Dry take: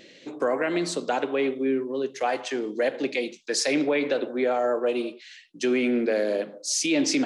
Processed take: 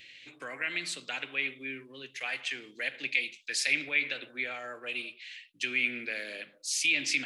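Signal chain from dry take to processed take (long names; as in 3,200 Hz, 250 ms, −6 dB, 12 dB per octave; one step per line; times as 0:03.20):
drawn EQ curve 120 Hz 0 dB, 190 Hz −15 dB, 260 Hz −14 dB, 410 Hz −18 dB, 920 Hz −14 dB, 2,400 Hz +10 dB, 5,900 Hz −3 dB, 11,000 Hz +5 dB
level −4.5 dB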